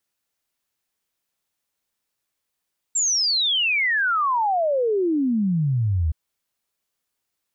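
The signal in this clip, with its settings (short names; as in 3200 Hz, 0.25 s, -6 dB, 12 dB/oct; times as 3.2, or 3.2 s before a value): log sweep 7600 Hz -> 74 Hz 3.17 s -18 dBFS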